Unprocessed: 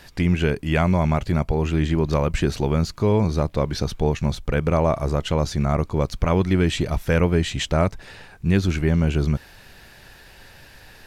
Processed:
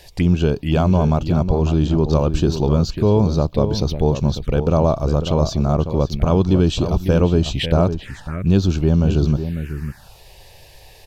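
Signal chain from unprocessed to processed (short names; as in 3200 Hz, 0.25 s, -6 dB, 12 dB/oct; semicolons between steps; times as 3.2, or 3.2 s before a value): outdoor echo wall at 94 m, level -9 dB; envelope phaser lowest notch 210 Hz, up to 2000 Hz, full sweep at -18.5 dBFS; gain +4 dB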